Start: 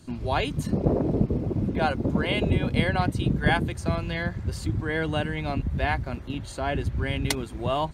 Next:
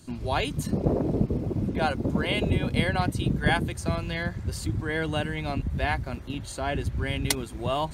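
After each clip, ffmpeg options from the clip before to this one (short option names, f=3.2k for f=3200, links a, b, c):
-af "highshelf=f=5.6k:g=8,areverse,acompressor=mode=upward:threshold=-35dB:ratio=2.5,areverse,volume=-1.5dB"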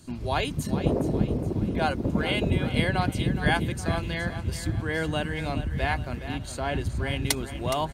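-af "aecho=1:1:417|834|1251|1668|2085:0.266|0.125|0.0588|0.0276|0.013"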